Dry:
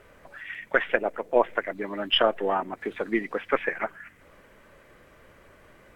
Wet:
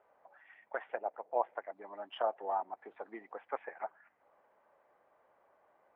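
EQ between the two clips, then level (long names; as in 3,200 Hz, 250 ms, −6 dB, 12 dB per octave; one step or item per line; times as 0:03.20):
resonant band-pass 800 Hz, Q 3.8
−4.0 dB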